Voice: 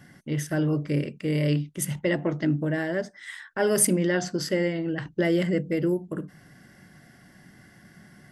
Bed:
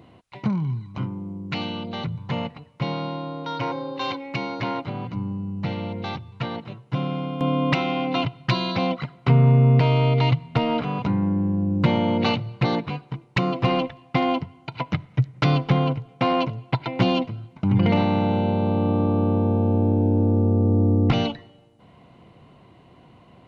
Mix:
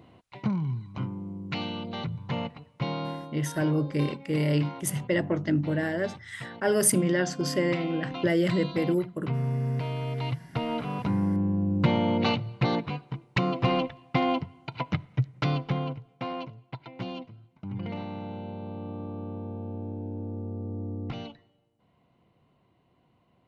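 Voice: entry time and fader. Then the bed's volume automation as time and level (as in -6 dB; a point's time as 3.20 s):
3.05 s, -1.0 dB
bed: 3.11 s -4 dB
3.34 s -13 dB
10.06 s -13 dB
11.18 s -3.5 dB
14.97 s -3.5 dB
16.69 s -16 dB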